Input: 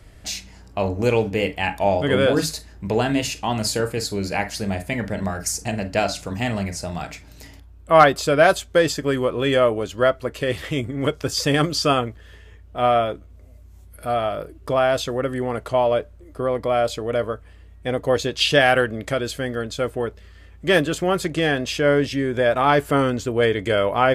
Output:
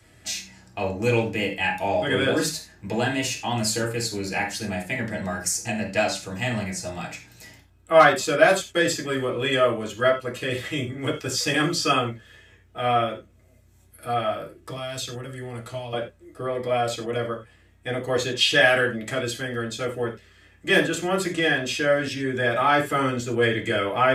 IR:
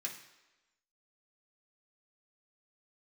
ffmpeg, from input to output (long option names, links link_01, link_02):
-filter_complex "[0:a]asettb=1/sr,asplit=3[link_01][link_02][link_03];[link_01]atrim=end=14.564[link_04];[link_02]atrim=start=14.56:end=15.93,asetpts=PTS-STARTPTS,afade=type=in:duration=0.004:curve=qsin,afade=type=out:start_time=1.366:duration=0.004:curve=qsin,acrossover=split=180|3000[link_05][link_06][link_07];[link_06]acompressor=threshold=-31dB:ratio=6[link_08];[link_05][link_08][link_07]amix=inputs=3:normalize=0[link_09];[link_03]atrim=start=15.926[link_10];[link_04][link_09]acrossfade=duration=0.004:curve1=hsin:curve2=qsin[link_11];[link_11][link_10]acrossfade=duration=0.004:curve1=qsin:curve2=hsin[link_12];[1:a]atrim=start_sample=2205,atrim=end_sample=4410[link_13];[link_12][link_13]afir=irnorm=-1:irlink=0"